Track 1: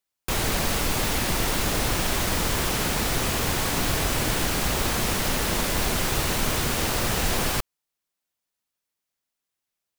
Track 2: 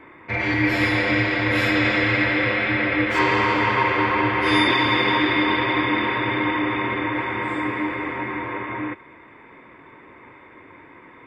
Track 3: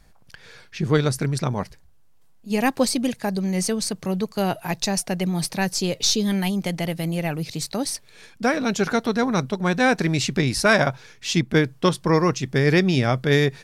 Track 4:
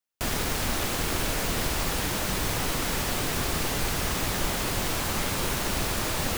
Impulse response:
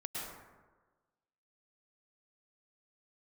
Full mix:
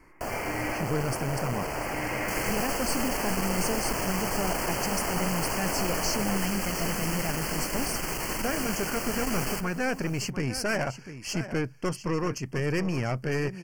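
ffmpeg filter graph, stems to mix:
-filter_complex "[0:a]equalizer=frequency=82:width=1.6:gain=-13,adelay=2000,volume=-4dB,asplit=3[link_01][link_02][link_03];[link_02]volume=-15dB[link_04];[link_03]volume=-17.5dB[link_05];[1:a]volume=-10.5dB[link_06];[2:a]asoftclip=type=tanh:threshold=-15.5dB,volume=-3.5dB,asplit=3[link_07][link_08][link_09];[link_08]volume=-13dB[link_10];[3:a]equalizer=frequency=680:width=0.67:gain=14,volume=-8.5dB[link_11];[link_09]apad=whole_len=496877[link_12];[link_06][link_12]sidechaincompress=threshold=-35dB:ratio=8:attack=16:release=668[link_13];[4:a]atrim=start_sample=2205[link_14];[link_04][link_14]afir=irnorm=-1:irlink=0[link_15];[link_05][link_10]amix=inputs=2:normalize=0,aecho=0:1:695:1[link_16];[link_01][link_13][link_07][link_11][link_15][link_16]amix=inputs=6:normalize=0,aeval=exprs='(tanh(12.6*val(0)+0.5)-tanh(0.5))/12.6':channel_layout=same,asuperstop=centerf=3700:order=8:qfactor=2.9"

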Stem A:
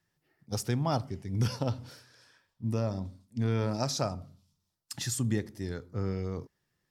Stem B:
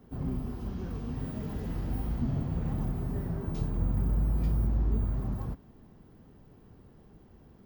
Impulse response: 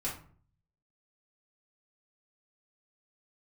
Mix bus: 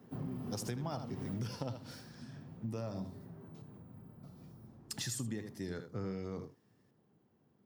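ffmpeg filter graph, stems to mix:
-filter_complex "[0:a]volume=-1dB,asplit=3[link_01][link_02][link_03];[link_01]atrim=end=3.27,asetpts=PTS-STARTPTS,afade=type=out:start_time=3.266:duration=0.004:curve=hsin[link_04];[link_02]atrim=start=3.27:end=4.23,asetpts=PTS-STARTPTS,volume=0[link_05];[link_03]atrim=start=4.23,asetpts=PTS-STARTPTS,afade=type=in:duration=0.004:curve=hsin[link_06];[link_04][link_05][link_06]concat=n=3:v=0:a=1,asplit=2[link_07][link_08];[link_08]volume=-11dB[link_09];[1:a]acompressor=threshold=-30dB:ratio=5,volume=-1.5dB,afade=type=out:start_time=1.32:duration=0.29:silence=0.237137[link_10];[link_09]aecho=0:1:78:1[link_11];[link_07][link_10][link_11]amix=inputs=3:normalize=0,highpass=frequency=110:width=0.5412,highpass=frequency=110:width=1.3066,acompressor=threshold=-36dB:ratio=6"

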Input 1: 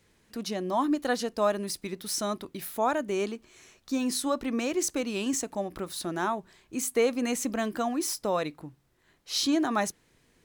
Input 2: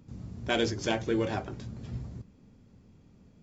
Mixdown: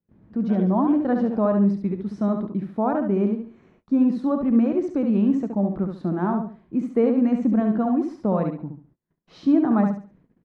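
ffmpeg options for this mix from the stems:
ffmpeg -i stem1.wav -i stem2.wav -filter_complex "[0:a]equalizer=frequency=190:width_type=o:width=1:gain=14.5,volume=1.5dB,asplit=2[link_01][link_02];[link_02]volume=-5.5dB[link_03];[1:a]lowshelf=frequency=190:gain=-10.5,volume=-8dB,asplit=2[link_04][link_05];[link_05]volume=-8dB[link_06];[link_03][link_06]amix=inputs=2:normalize=0,aecho=0:1:70|140|210|280:1|0.28|0.0784|0.022[link_07];[link_01][link_04][link_07]amix=inputs=3:normalize=0,agate=range=-25dB:threshold=-54dB:ratio=16:detection=peak,lowpass=1100" out.wav

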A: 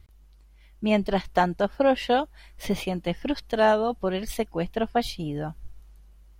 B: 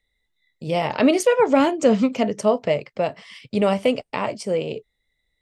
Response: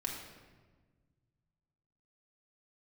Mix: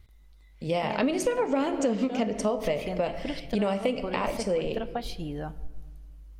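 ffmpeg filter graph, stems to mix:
-filter_complex "[0:a]asubboost=boost=2.5:cutoff=83,acompressor=threshold=-26dB:ratio=6,volume=-3.5dB,asplit=2[link_01][link_02];[link_02]volume=-14dB[link_03];[1:a]volume=-5dB,asplit=3[link_04][link_05][link_06];[link_05]volume=-6.5dB[link_07];[link_06]apad=whole_len=282194[link_08];[link_01][link_08]sidechaincompress=threshold=-29dB:ratio=8:attack=16:release=176[link_09];[2:a]atrim=start_sample=2205[link_10];[link_03][link_07]amix=inputs=2:normalize=0[link_11];[link_11][link_10]afir=irnorm=-1:irlink=0[link_12];[link_09][link_04][link_12]amix=inputs=3:normalize=0,acompressor=threshold=-23dB:ratio=5"

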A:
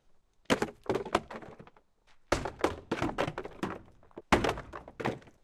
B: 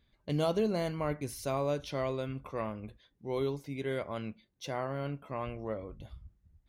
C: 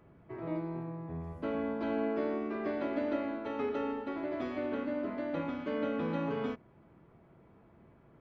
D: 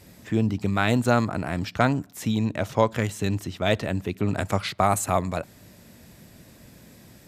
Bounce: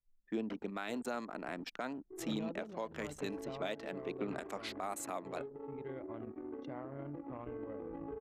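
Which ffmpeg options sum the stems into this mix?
ffmpeg -i stem1.wav -i stem2.wav -i stem3.wav -i stem4.wav -filter_complex "[0:a]lowpass=3000,acompressor=threshold=-36dB:ratio=5,asoftclip=type=tanh:threshold=-27.5dB,volume=-7.5dB[link_01];[1:a]adelay=2000,volume=-5.5dB[link_02];[2:a]aecho=1:1:2.5:0.88,adynamicequalizer=threshold=0.0112:dfrequency=360:dqfactor=0.78:tfrequency=360:tqfactor=0.78:attack=5:release=100:ratio=0.375:range=1.5:mode=boostabove:tftype=bell,adelay=1800,volume=-9.5dB[link_03];[3:a]agate=range=-33dB:threshold=-38dB:ratio=3:detection=peak,highpass=frequency=240:width=0.5412,highpass=frequency=240:width=1.3066,volume=-8.5dB[link_04];[link_01][link_02][link_03]amix=inputs=3:normalize=0,highshelf=frequency=5100:gain=-7.5,acompressor=threshold=-40dB:ratio=5,volume=0dB[link_05];[link_04][link_05]amix=inputs=2:normalize=0,anlmdn=0.1,alimiter=level_in=3.5dB:limit=-24dB:level=0:latency=1:release=402,volume=-3.5dB" out.wav

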